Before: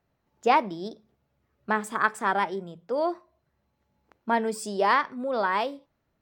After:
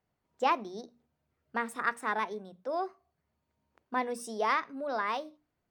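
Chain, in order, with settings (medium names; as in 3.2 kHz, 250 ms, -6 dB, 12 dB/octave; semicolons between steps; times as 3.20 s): tape speed +9%; hum notches 60/120/180/240/300 Hz; trim -6.5 dB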